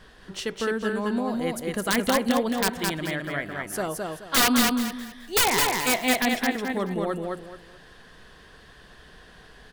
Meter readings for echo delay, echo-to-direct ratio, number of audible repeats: 214 ms, −2.5 dB, 3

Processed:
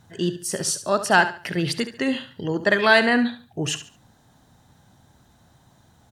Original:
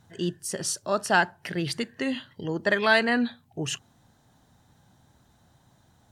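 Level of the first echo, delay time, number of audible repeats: −12.0 dB, 71 ms, 3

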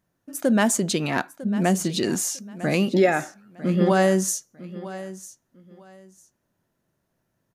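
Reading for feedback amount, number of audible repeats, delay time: 22%, 2, 951 ms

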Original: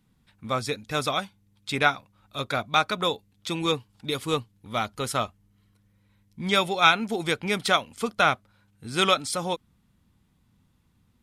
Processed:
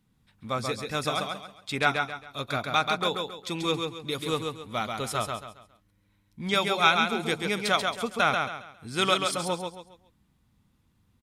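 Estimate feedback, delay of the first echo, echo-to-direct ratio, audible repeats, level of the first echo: 33%, 136 ms, −4.0 dB, 4, −4.5 dB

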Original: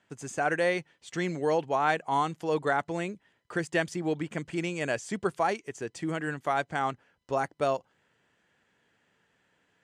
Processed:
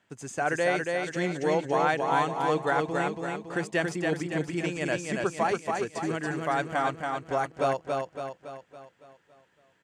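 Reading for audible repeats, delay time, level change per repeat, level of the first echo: 6, 280 ms, −6.0 dB, −3.5 dB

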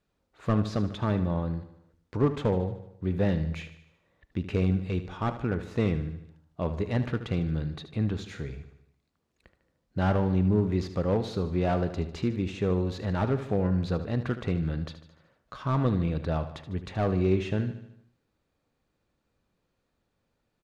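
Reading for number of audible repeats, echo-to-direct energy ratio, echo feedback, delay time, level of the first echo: 5, −10.5 dB, 54%, 75 ms, −12.0 dB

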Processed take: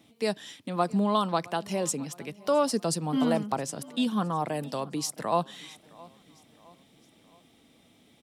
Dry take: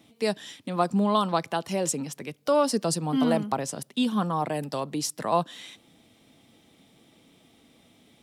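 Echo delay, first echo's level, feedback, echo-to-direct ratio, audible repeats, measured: 665 ms, −23.0 dB, 48%, −22.0 dB, 2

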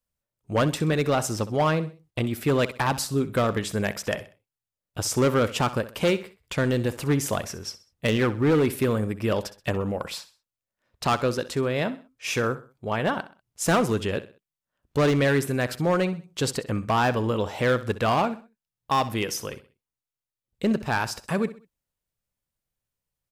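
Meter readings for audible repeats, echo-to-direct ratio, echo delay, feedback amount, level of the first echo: 3, −15.0 dB, 64 ms, 36%, −15.5 dB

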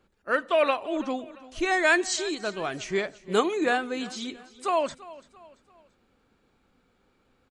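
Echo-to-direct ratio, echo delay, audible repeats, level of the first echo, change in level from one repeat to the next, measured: −18.0 dB, 339 ms, 3, −19.0 dB, −7.5 dB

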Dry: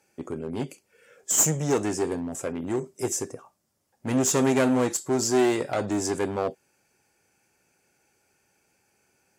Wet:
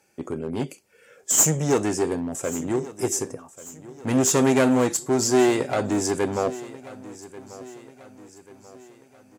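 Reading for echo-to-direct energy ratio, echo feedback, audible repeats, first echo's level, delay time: −17.0 dB, 47%, 3, −18.0 dB, 1,138 ms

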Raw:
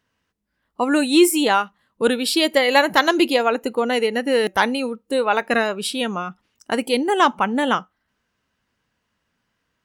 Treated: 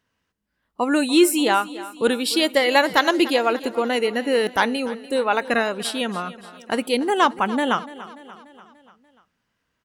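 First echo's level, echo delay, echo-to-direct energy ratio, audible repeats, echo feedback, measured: −17.0 dB, 292 ms, −15.5 dB, 4, 56%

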